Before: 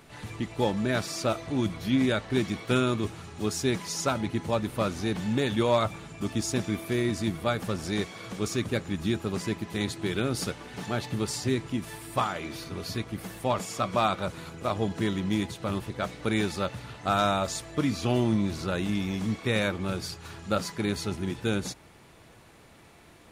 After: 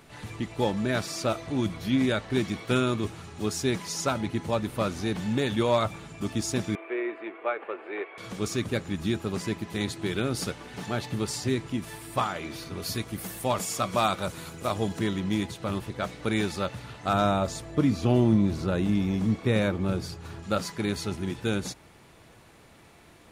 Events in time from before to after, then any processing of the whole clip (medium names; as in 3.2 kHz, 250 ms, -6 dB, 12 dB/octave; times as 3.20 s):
6.75–8.18 s: elliptic band-pass 370–2500 Hz
12.82–14.99 s: treble shelf 6.8 kHz +12 dB
17.13–20.43 s: tilt shelf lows +4.5 dB, about 910 Hz